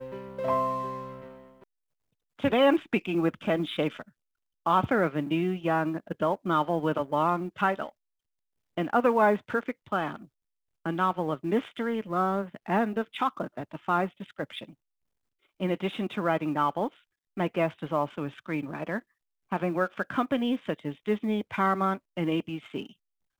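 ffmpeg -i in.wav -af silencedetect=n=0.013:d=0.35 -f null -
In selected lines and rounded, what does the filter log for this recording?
silence_start: 1.35
silence_end: 2.40 | silence_duration: 1.05
silence_start: 4.02
silence_end: 4.66 | silence_duration: 0.64
silence_start: 7.89
silence_end: 8.77 | silence_duration: 0.88
silence_start: 10.22
silence_end: 10.86 | silence_duration: 0.63
silence_start: 14.64
silence_end: 15.60 | silence_duration: 0.97
silence_start: 16.88
silence_end: 17.37 | silence_duration: 0.49
silence_start: 18.99
silence_end: 19.52 | silence_duration: 0.53
silence_start: 22.86
silence_end: 23.40 | silence_duration: 0.53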